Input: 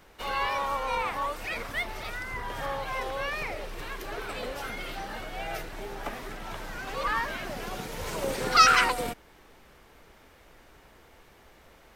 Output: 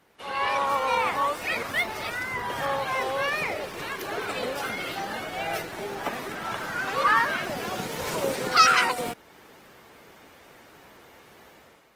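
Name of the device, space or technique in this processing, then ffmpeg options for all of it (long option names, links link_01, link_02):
video call: -filter_complex "[0:a]asettb=1/sr,asplit=3[link_01][link_02][link_03];[link_01]atrim=end=6.354[link_04];[link_02]atrim=start=6.35:end=7.42,asetpts=PTS-STARTPTS,afade=type=in:duration=0.004:curve=qsin,afade=type=out:start_time=1.066:duration=0.004:curve=qsin,equalizer=frequency=1400:width=2.1:gain=5.5[link_05];[link_03]atrim=start=7.416[link_06];[link_04][link_05]acrossfade=duration=0.004:curve1=hsin:curve2=qsin[link_07];[link_07][link_06]acrossfade=duration=0.004:curve1=qsin:curve2=hsin,highpass=120,dynaudnorm=framelen=110:gausssize=7:maxgain=9.5dB,volume=-4dB" -ar 48000 -c:a libopus -b:a 20k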